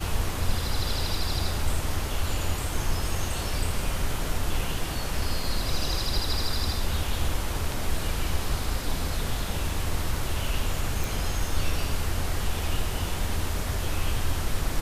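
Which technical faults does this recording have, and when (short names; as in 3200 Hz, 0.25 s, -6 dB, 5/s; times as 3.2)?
11.04 pop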